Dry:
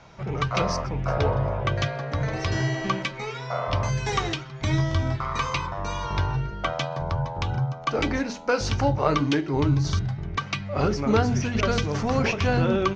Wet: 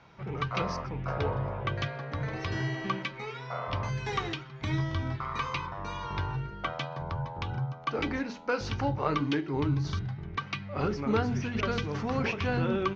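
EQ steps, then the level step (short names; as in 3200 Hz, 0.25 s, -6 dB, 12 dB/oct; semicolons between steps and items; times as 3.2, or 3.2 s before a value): LPF 4100 Hz 12 dB/oct; low shelf 62 Hz -9.5 dB; bell 630 Hz -5.5 dB 0.46 oct; -5.0 dB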